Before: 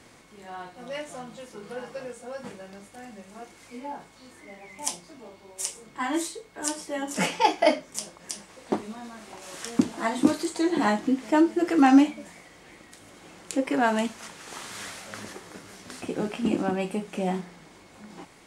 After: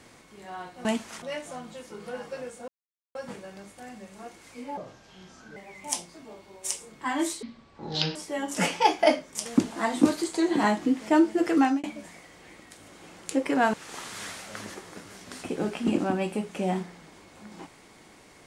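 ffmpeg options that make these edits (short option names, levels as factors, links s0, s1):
-filter_complex "[0:a]asplit=11[s0][s1][s2][s3][s4][s5][s6][s7][s8][s9][s10];[s0]atrim=end=0.852[s11];[s1]atrim=start=13.948:end=14.322[s12];[s2]atrim=start=0.848:end=2.31,asetpts=PTS-STARTPTS,afade=t=out:st=1.458:d=0.004:c=hsin,apad=pad_dur=0.47[s13];[s3]atrim=start=2.31:end=3.934,asetpts=PTS-STARTPTS,afade=t=in:d=0.004:c=hsin[s14];[s4]atrim=start=3.93:end=4.51,asetpts=PTS-STARTPTS,asetrate=32193,aresample=44100,atrim=end_sample=35038,asetpts=PTS-STARTPTS[s15];[s5]atrim=start=4.506:end=6.374[s16];[s6]atrim=start=6.37:end=6.75,asetpts=PTS-STARTPTS,asetrate=22932,aresample=44100[s17];[s7]atrim=start=6.746:end=8.052[s18];[s8]atrim=start=9.668:end=12.05,asetpts=PTS-STARTPTS,afade=t=out:st=2.072:d=0.31[s19];[s9]atrim=start=12.05:end=13.952,asetpts=PTS-STARTPTS,afade=t=in:d=0.004:c=hsin[s20];[s10]atrim=start=14.318[s21];[s11][s12]acrossfade=d=0.004:c1=hsin:c2=hsin[s22];[s13][s14]concat=n=2:v=0:a=1[s23];[s22][s23]acrossfade=d=0.004:c1=hsin:c2=hsin[s24];[s24][s15]acrossfade=d=0.004:c1=hsin:c2=hsin[s25];[s25][s16]acrossfade=d=0.004:c1=hsin:c2=hsin[s26];[s26][s17]acrossfade=d=0.004:c1=hsin:c2=hsin[s27];[s27][s18]acrossfade=d=0.004:c1=hsin:c2=hsin[s28];[s19][s20]concat=n=2:v=0:a=1[s29];[s28][s29]acrossfade=d=0.004:c1=hsin:c2=hsin[s30];[s30][s21]acrossfade=d=0.004:c1=hsin:c2=hsin"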